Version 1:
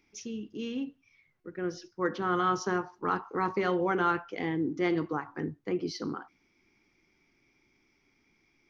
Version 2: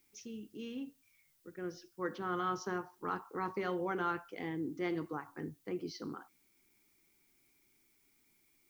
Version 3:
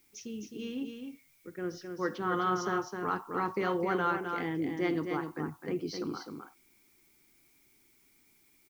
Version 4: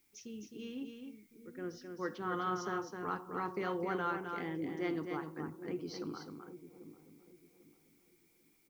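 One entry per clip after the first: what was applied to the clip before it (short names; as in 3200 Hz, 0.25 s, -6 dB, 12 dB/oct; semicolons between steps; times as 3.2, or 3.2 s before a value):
added noise blue -65 dBFS; gain -8 dB
echo 0.26 s -6 dB; gain +5 dB
dark delay 0.796 s, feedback 31%, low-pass 550 Hz, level -11 dB; gain -6 dB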